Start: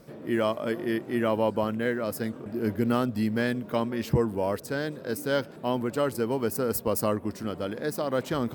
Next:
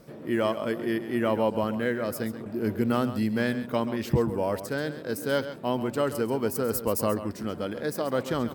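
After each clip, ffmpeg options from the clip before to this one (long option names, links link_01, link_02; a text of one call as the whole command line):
ffmpeg -i in.wav -af "aecho=1:1:134:0.251" out.wav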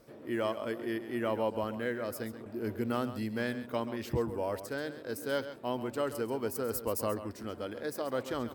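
ffmpeg -i in.wav -af "equalizer=frequency=170:width_type=o:width=0.43:gain=-13,volume=-6dB" out.wav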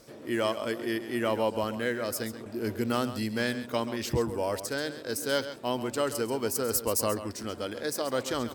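ffmpeg -i in.wav -af "equalizer=frequency=6500:width_type=o:width=2:gain=10.5,volume=3.5dB" out.wav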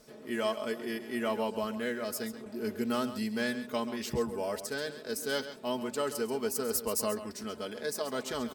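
ffmpeg -i in.wav -af "aecho=1:1:4.7:0.66,volume=-5dB" out.wav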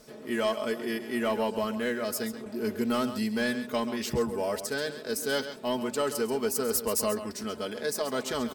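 ffmpeg -i in.wav -af "asoftclip=type=tanh:threshold=-21.5dB,volume=4.5dB" out.wav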